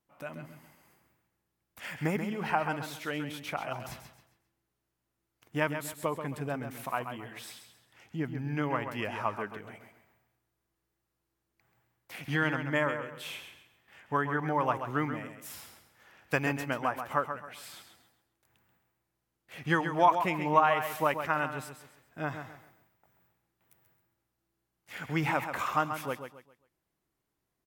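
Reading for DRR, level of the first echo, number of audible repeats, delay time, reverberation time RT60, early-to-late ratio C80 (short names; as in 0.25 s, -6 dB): none, -8.5 dB, 3, 0.134 s, none, none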